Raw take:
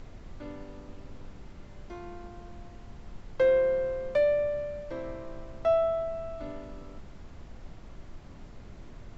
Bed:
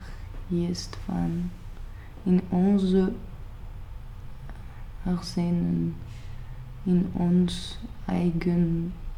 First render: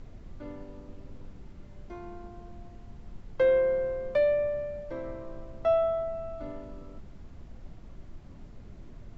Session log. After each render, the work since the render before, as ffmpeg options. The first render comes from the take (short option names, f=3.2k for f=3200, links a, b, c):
-af "afftdn=nr=6:nf=-48"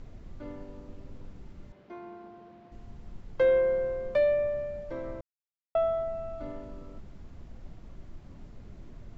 -filter_complex "[0:a]asettb=1/sr,asplit=3[a][b][c];[a]atrim=end=1.724[d];[b]atrim=start=1.72:end=2.72,asetpts=PTS-STARTPTS,afade=t=in:d=0.004:c=qsin,afade=t=out:st=0.996:d=0.004:c=qsin,highpass=230,lowpass=3.7k[e];[c]atrim=start=2.716[f];[d][e]acrossfade=d=0.004:c1=hsin:c2=qsin[g];[g][f]acrossfade=d=0.004:c1=qsin:c2=hsin,asplit=3[h][i][j];[h]atrim=end=5.21,asetpts=PTS-STARTPTS,afade=t=out:st=5.206:d=0.004:c=hsin[k];[i]atrim=start=5.21:end=5.75,asetpts=PTS-STARTPTS,volume=0[l];[j]atrim=start=5.75,asetpts=PTS-STARTPTS,afade=t=in:d=0.004:c=hsin[m];[k][l][m]concat=n=3:v=0:a=1"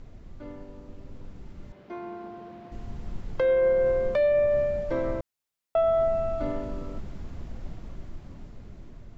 -af "dynaudnorm=f=770:g=5:m=9.5dB,alimiter=limit=-17dB:level=0:latency=1"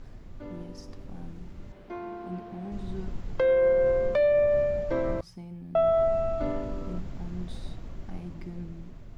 -filter_complex "[1:a]volume=-16.5dB[a];[0:a][a]amix=inputs=2:normalize=0"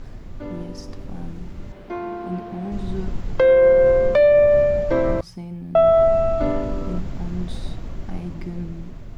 -af "volume=8.5dB"